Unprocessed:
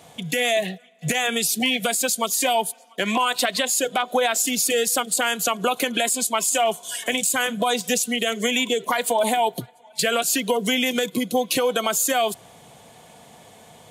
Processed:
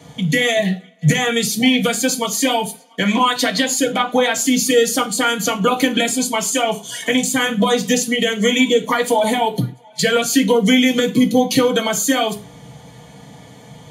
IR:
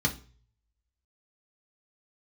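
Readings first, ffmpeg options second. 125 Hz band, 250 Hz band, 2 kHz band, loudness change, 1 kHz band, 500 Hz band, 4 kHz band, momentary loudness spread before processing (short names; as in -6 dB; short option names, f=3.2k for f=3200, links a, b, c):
+14.0 dB, +11.0 dB, +4.5 dB, +5.0 dB, +3.0 dB, +5.5 dB, +4.5 dB, 5 LU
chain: -filter_complex "[1:a]atrim=start_sample=2205,atrim=end_sample=6174[a];[0:a][a]afir=irnorm=-1:irlink=0,volume=-4.5dB"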